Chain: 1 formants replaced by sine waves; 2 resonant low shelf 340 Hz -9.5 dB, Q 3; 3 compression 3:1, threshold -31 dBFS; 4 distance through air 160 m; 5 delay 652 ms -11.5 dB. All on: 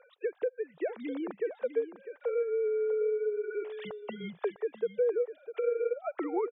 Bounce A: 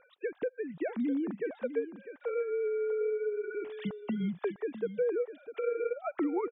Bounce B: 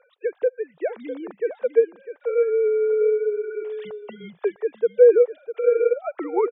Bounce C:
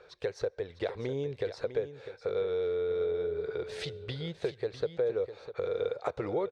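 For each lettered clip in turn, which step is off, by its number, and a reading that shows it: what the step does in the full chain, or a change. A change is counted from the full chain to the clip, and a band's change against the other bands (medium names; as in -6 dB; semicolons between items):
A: 2, 250 Hz band +6.5 dB; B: 3, mean gain reduction 7.0 dB; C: 1, 250 Hz band -2.5 dB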